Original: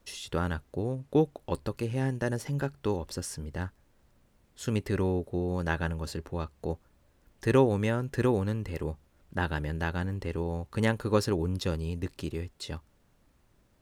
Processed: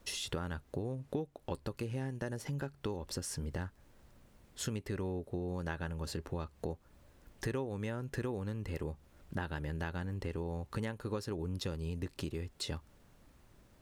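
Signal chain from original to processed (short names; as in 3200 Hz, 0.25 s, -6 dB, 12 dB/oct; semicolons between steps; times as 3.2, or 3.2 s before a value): compressor 6:1, threshold -39 dBFS, peak gain reduction 20 dB; gain +3.5 dB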